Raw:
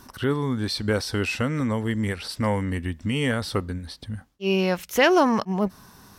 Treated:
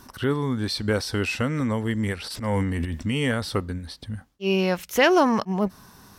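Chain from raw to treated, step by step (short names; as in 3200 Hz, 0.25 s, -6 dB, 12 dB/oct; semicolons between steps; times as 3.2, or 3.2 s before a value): 2.24–3.03 transient shaper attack -12 dB, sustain +11 dB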